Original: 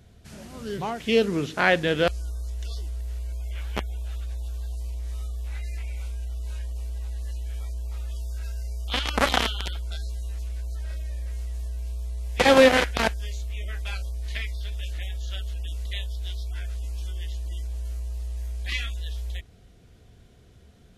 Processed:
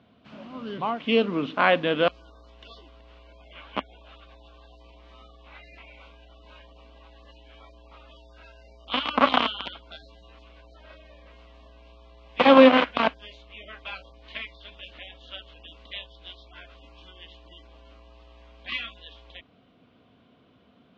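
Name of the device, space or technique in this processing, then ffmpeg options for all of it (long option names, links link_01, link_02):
kitchen radio: -af "highpass=210,equalizer=frequency=260:width_type=q:width=4:gain=8,equalizer=frequency=390:width_type=q:width=4:gain=-6,equalizer=frequency=600:width_type=q:width=4:gain=3,equalizer=frequency=1100:width_type=q:width=4:gain=9,equalizer=frequency=1800:width_type=q:width=4:gain=-6,equalizer=frequency=2900:width_type=q:width=4:gain=3,lowpass=frequency=3500:width=0.5412,lowpass=frequency=3500:width=1.3066"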